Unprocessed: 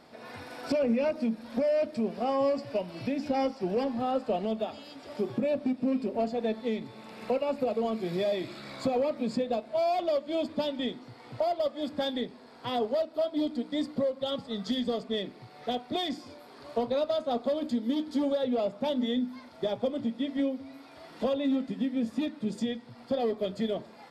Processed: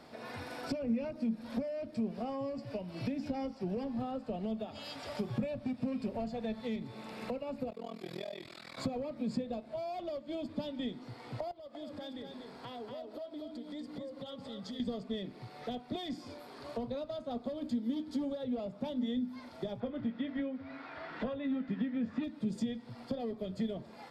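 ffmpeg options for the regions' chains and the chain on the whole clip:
-filter_complex "[0:a]asettb=1/sr,asplit=3[a][b][c];[a]atrim=end=4.754[d];[b]atrim=start=4.75:end=6.76,asetpts=PTS-STARTPTS,afade=t=in:d=0.004:c=qsin,afade=t=out:st=2.006:d=0.004:c=qsin,equalizer=f=310:w=1.2:g=-10.5,acontrast=47[e];[c]atrim=start=6.756[f];[d][e]acrossfade=d=0.004:c1=hsin:c2=qsin[g];[g][f]acrossfade=d=0.004:c1=qsin:c2=hsin,asettb=1/sr,asplit=3[h][i][j];[h]atrim=end=7.704[k];[i]atrim=start=7.7:end=8.78,asetpts=PTS-STARTPTS,afade=t=in:d=0.004:c=qsin,afade=t=out:st=1.076:d=0.004:c=qsin,highpass=45,tremolo=f=41:d=1,lowshelf=f=490:g=-11[l];[j]atrim=start=8.776[m];[k][l]acrossfade=d=0.004:c1=hsin:c2=qsin[n];[n][m]acrossfade=d=0.004:c1=qsin:c2=hsin,asettb=1/sr,asplit=3[o][p][q];[o]atrim=end=11.514[r];[p]atrim=start=11.51:end=14.8,asetpts=PTS-STARTPTS,afade=t=in:d=0.004:c=qsin,afade=t=out:st=3.286:d=0.004:c=qsin,acompressor=threshold=-43dB:ratio=5:attack=3.2:release=140:knee=1:detection=peak,aecho=1:1:239:0.531,atrim=end_sample=145089[s];[q]atrim=start=14.796[t];[r][s]acrossfade=d=0.004:c1=hsin:c2=qsin[u];[u][t]acrossfade=d=0.004:c1=qsin:c2=hsin,asettb=1/sr,asplit=3[v][w][x];[v]atrim=end=19.804[y];[w]atrim=start=19.8:end=22.24,asetpts=PTS-STARTPTS,afade=t=in:d=0.004:c=qsin,afade=t=out:st=2.436:d=0.004:c=qsin,lowpass=3.5k,equalizer=f=1.6k:w=1.2:g=11,asplit=2[z][aa];[aa]adelay=20,volume=-12.5dB[ab];[z][ab]amix=inputs=2:normalize=0,atrim=end_sample=107604[ac];[x]atrim=start=22.236[ad];[y][ac]acrossfade=d=0.004:c1=hsin:c2=qsin[ae];[ae][ad]acrossfade=d=0.004:c1=qsin:c2=hsin,lowshelf=f=160:g=3.5,acrossover=split=200[af][ag];[ag]acompressor=threshold=-39dB:ratio=5[ah];[af][ah]amix=inputs=2:normalize=0"

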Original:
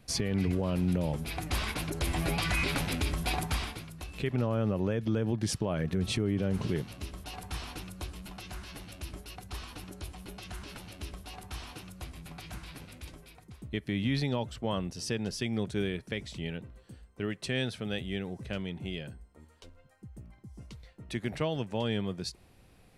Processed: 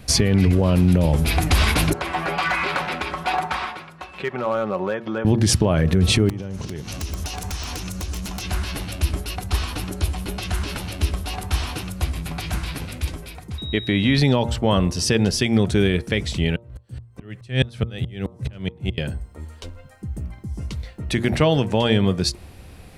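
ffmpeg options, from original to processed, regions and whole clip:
-filter_complex "[0:a]asettb=1/sr,asplit=3[a][b][c];[a]atrim=end=1.934[d];[b]atrim=start=1.93:end=5.25,asetpts=PTS-STARTPTS,afade=t=in:d=0.004:c=qsin,afade=t=out:st=3.316:d=0.004:c=qsin,bandpass=f=1.1k:t=q:w=1.2,aecho=1:1:5.4:0.44,atrim=end_sample=146412,asoftclip=type=hard:threshold=-30dB[e];[c]atrim=start=5.246[f];[d][e]acrossfade=d=0.004:c1=hsin:c2=qsin[g];[g][f]acrossfade=d=0.004:c1=qsin:c2=hsin,asettb=1/sr,asplit=3[h][i][j];[h]atrim=end=6.294[k];[i]atrim=start=6.29:end=8.44,asetpts=PTS-STARTPTS,afade=t=in:d=0.004:c=qsin,afade=t=out:st=2.146:d=0.004:c=qsin,equalizer=f=6.2k:w=2.3:g=11.5,acompressor=threshold=-41dB:ratio=20:attack=3.2:release=140:knee=1:detection=peak,aeval=exprs='(mod(56.2*val(0)+1,2)-1)/56.2':c=same[l];[j]atrim=start=8.436[m];[k][l]acrossfade=d=0.004:c1=hsin:c2=qsin[n];[n][m]acrossfade=d=0.004:c1=qsin:c2=hsin,asettb=1/sr,asplit=3[o][p][q];[o]atrim=end=13.584[r];[p]atrim=start=13.58:end=14.18,asetpts=PTS-STARTPTS,afade=t=in:d=0.004:c=qsin,afade=t=out:st=0.596:d=0.004:c=qsin,bass=f=250:g=-6,treble=f=4k:g=-6,aeval=exprs='val(0)+0.00447*sin(2*PI*3800*n/s)':c=same[s];[q]atrim=start=14.176[t];[r][s]acrossfade=d=0.004:c1=hsin:c2=qsin[u];[u][t]acrossfade=d=0.004:c1=qsin:c2=hsin,asettb=1/sr,asplit=3[v][w][x];[v]atrim=end=16.564[y];[w]atrim=start=16.56:end=18.98,asetpts=PTS-STARTPTS,afade=t=in:d=0.004:c=qsin,afade=t=out:st=2.416:d=0.004:c=qsin,equalizer=f=120:t=o:w=0.26:g=13.5,aeval=exprs='val(0)*pow(10,-37*if(lt(mod(-4.7*n/s,1),2*abs(-4.7)/1000),1-mod(-4.7*n/s,1)/(2*abs(-4.7)/1000),(mod(-4.7*n/s,1)-2*abs(-4.7)/1000)/(1-2*abs(-4.7)/1000))/20)':c=same[z];[x]atrim=start=18.976[aa];[y][z]acrossfade=d=0.004:c1=hsin:c2=qsin[ab];[ab][aa]acrossfade=d=0.004:c1=qsin:c2=hsin,equalizer=f=74:t=o:w=0.59:g=8.5,bandreject=f=116.8:t=h:w=4,bandreject=f=233.6:t=h:w=4,bandreject=f=350.4:t=h:w=4,bandreject=f=467.2:t=h:w=4,bandreject=f=584:t=h:w=4,bandreject=f=700.8:t=h:w=4,bandreject=f=817.6:t=h:w=4,bandreject=f=934.4:t=h:w=4,bandreject=f=1.0512k:t=h:w=4,bandreject=f=1.168k:t=h:w=4,bandreject=f=1.2848k:t=h:w=4,alimiter=level_in=21.5dB:limit=-1dB:release=50:level=0:latency=1,volume=-6.5dB"

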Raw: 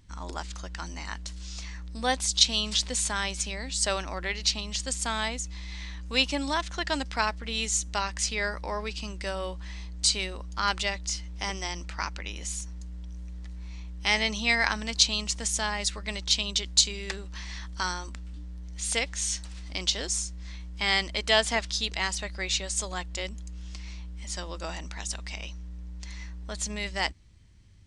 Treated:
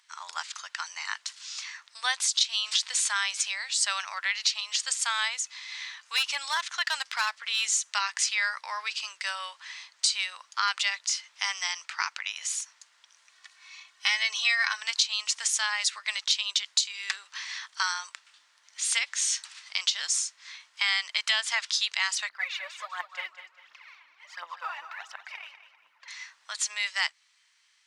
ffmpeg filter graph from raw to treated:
-filter_complex "[0:a]asettb=1/sr,asplit=3[a][b][c];[a]atrim=end=5.874[d];[b]atrim=start=5.87:end=7.69,asetpts=PTS-STARTPTS,afade=t=in:d=0.004:c=qsin,afade=t=out:st=1.816:d=0.004:c=qsin,bandreject=f=60:t=h:w=6,bandreject=f=120:t=h:w=6,bandreject=f=180:t=h:w=6,bandreject=f=240:t=h:w=6,bandreject=f=300:t=h:w=6,volume=22dB,asoftclip=hard,volume=-22dB[e];[c]atrim=start=7.686[f];[d][e]acrossfade=d=0.004:c1=hsin:c2=qsin[g];[g][f]acrossfade=d=0.004:c1=qsin:c2=hsin,asettb=1/sr,asplit=3[h][i][j];[h]atrim=end=13.304[k];[i]atrim=start=13.3:end=14.77,asetpts=PTS-STARTPTS,afade=t=in:d=0.004:c=qsin,afade=t=out:st=1.466:d=0.004:c=qsin,bandreject=f=740:w=21,aecho=1:1:2.7:0.71,atrim=end_sample=64827[l];[j]atrim=start=14.766[m];[k][l]acrossfade=d=0.004:c1=hsin:c2=qsin[n];[n][m]acrossfade=d=0.004:c1=qsin:c2=hsin,asettb=1/sr,asplit=3[o][p][q];[o]atrim=end=22.294[r];[p]atrim=start=22.29:end=26.08,asetpts=PTS-STARTPTS,afade=t=in:d=0.004:c=qsin,afade=t=out:st=3.786:d=0.004:c=qsin,lowpass=1.5k,aphaser=in_gain=1:out_gain=1:delay=3.6:decay=0.73:speed=1.4:type=triangular,aecho=1:1:198|396|594:0.266|0.0851|0.0272,atrim=end_sample=167139[s];[q]atrim=start=26.076[t];[r][s]acrossfade=d=0.004:c1=hsin:c2=qsin[u];[u][t]acrossfade=d=0.004:c1=qsin:c2=hsin,highpass=f=1.1k:w=0.5412,highpass=f=1.1k:w=1.3066,highshelf=f=10k:g=-7,acompressor=threshold=-28dB:ratio=6,volume=6dB"

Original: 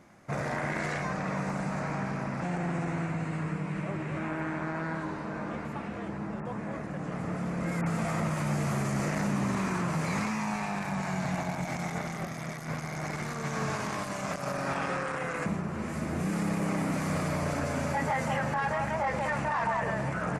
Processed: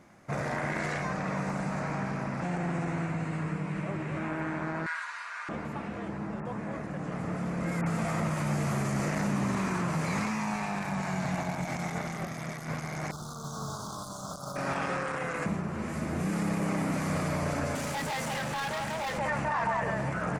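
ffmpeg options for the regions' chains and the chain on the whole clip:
-filter_complex "[0:a]asettb=1/sr,asplit=3[a][b][c];[a]atrim=end=4.864[d];[b]atrim=start=4.86:end=5.49,asetpts=PTS-STARTPTS,afade=t=in:d=0.004:c=qsin,afade=t=out:st=0.626:d=0.004:c=qsin,highpass=f=1.3k:w=0.5412,highpass=f=1.3k:w=1.3066,aecho=1:1:4.2:0.41,atrim=end_sample=27783,acontrast=58[e];[c]atrim=start=5.486[f];[d][e]acrossfade=d=0.004:c1=hsin:c2=qsin[g];[g][f]acrossfade=d=0.004:c1=qsin:c2=hsin,asettb=1/sr,asplit=3[h][i][j];[h]atrim=end=13.114[k];[i]atrim=start=13.11:end=14.56,asetpts=PTS-STARTPTS,afade=t=in:d=0.004:c=qsin,afade=t=out:st=1.446:d=0.004:c=qsin,equalizer=f=400:t=o:w=2.9:g=-8.5,acrusher=bits=5:mode=log:mix=0:aa=0.000001,asuperstop=centerf=2200:order=12:qfactor=1.1[l];[j]atrim=start=14.556[m];[k][l]acrossfade=d=0.004:c1=hsin:c2=qsin[n];[n][m]acrossfade=d=0.004:c1=qsin:c2=hsin,asettb=1/sr,asplit=3[o][p][q];[o]atrim=end=17.754[r];[p]atrim=start=17.75:end=19.18,asetpts=PTS-STARTPTS,afade=t=in:d=0.004:c=qsin,afade=t=out:st=1.426:d=0.004:c=qsin,highpass=83,volume=31.5dB,asoftclip=hard,volume=-31.5dB,highshelf=f=3.8k:g=9[s];[q]atrim=start=19.176[t];[r][s]acrossfade=d=0.004:c1=hsin:c2=qsin[u];[u][t]acrossfade=d=0.004:c1=qsin:c2=hsin"

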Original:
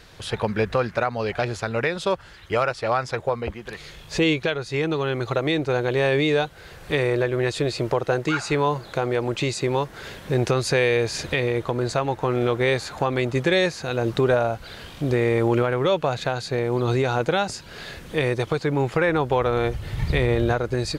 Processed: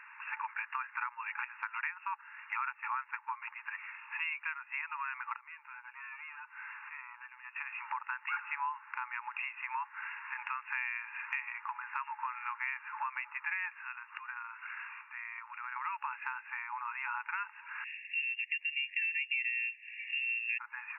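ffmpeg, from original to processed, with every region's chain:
-filter_complex "[0:a]asettb=1/sr,asplit=3[a][b][c];[a]atrim=end=5.364[d];[b]atrim=start=5.36:end=7.56,asetpts=PTS-STARTPTS,afade=t=in:d=0.004:c=qsin,afade=t=out:st=2.196:d=0.004:c=qsin,volume=18.5dB,asoftclip=hard,volume=-18.5dB,acompressor=threshold=-37dB:ratio=16:attack=3.2:release=140:knee=1:detection=peak[e];[c]atrim=start=7.556[f];[d][e]acrossfade=d=0.004:c1=hsin:c2=qsin[g];[g][f]acrossfade=d=0.004:c1=qsin:c2=hsin,asettb=1/sr,asplit=3[h][i][j];[h]atrim=end=13.704[k];[i]atrim=start=13.7:end=15.76,asetpts=PTS-STARTPTS,afade=t=in:d=0.004:c=qsin,afade=t=out:st=2.056:d=0.004:c=qsin,acompressor=threshold=-28dB:ratio=8:attack=3.2:release=140:knee=1:detection=peak,highpass=f=1k:w=0.5412,highpass=f=1k:w=1.3066[l];[j]atrim=start=15.756[m];[k][l]acrossfade=d=0.004:c1=hsin:c2=qsin[n];[n][m]acrossfade=d=0.004:c1=qsin:c2=hsin,asettb=1/sr,asplit=3[o][p][q];[o]atrim=end=17.844[r];[p]atrim=start=17.84:end=20.59,asetpts=PTS-STARTPTS,afade=t=in:d=0.004:c=qsin,afade=t=out:st=2.746:d=0.004:c=qsin,asuperstop=centerf=2000:order=12:qfactor=1.5,lowpass=f=2.7k:t=q:w=0.5098,lowpass=f=2.7k:t=q:w=0.6013,lowpass=f=2.7k:t=q:w=0.9,lowpass=f=2.7k:t=q:w=2.563,afreqshift=-3200[s];[q]atrim=start=20.586[t];[r][s]acrossfade=d=0.004:c1=hsin:c2=qsin[u];[u][t]acrossfade=d=0.004:c1=qsin:c2=hsin,afftfilt=real='re*between(b*sr/4096,840,2800)':imag='im*between(b*sr/4096,840,2800)':win_size=4096:overlap=0.75,acompressor=threshold=-41dB:ratio=2.5,volume=2dB"

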